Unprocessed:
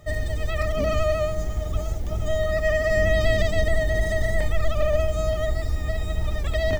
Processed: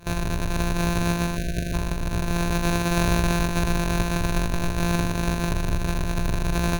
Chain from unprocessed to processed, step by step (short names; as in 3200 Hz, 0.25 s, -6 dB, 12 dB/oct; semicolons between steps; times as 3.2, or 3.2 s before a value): sample sorter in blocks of 256 samples; in parallel at -1 dB: compressor, threshold -26 dBFS, peak gain reduction 11.5 dB; on the sum: de-hum 79.1 Hz, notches 38; spectral delete 1.36–1.73, 690–1400 Hz; ripple EQ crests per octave 1.5, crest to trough 9 dB; gain -4.5 dB